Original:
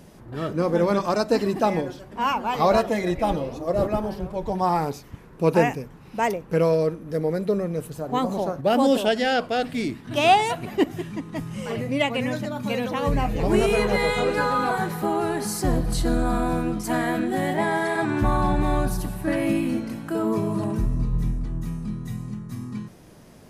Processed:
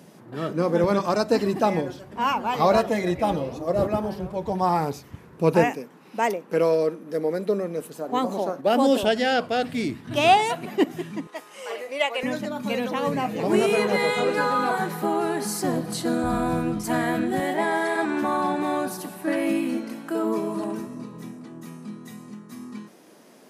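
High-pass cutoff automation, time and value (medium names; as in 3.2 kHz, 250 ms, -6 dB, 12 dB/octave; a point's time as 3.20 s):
high-pass 24 dB/octave
140 Hz
from 0.84 s 66 Hz
from 5.64 s 210 Hz
from 9.03 s 57 Hz
from 10.37 s 160 Hz
from 11.27 s 450 Hz
from 12.23 s 170 Hz
from 16.24 s 57 Hz
from 17.40 s 230 Hz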